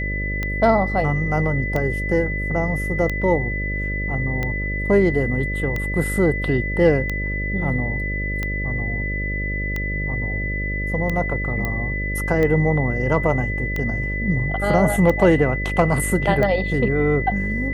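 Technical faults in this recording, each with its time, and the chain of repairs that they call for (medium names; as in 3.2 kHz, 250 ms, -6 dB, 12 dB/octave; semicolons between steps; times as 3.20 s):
buzz 50 Hz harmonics 12 -26 dBFS
tick 45 rpm -12 dBFS
whine 2 kHz -26 dBFS
11.65 s: pop -11 dBFS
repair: de-click; band-stop 2 kHz, Q 30; de-hum 50 Hz, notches 12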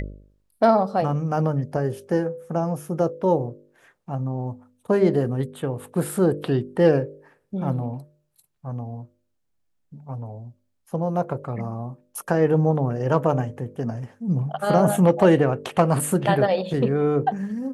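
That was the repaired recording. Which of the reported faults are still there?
nothing left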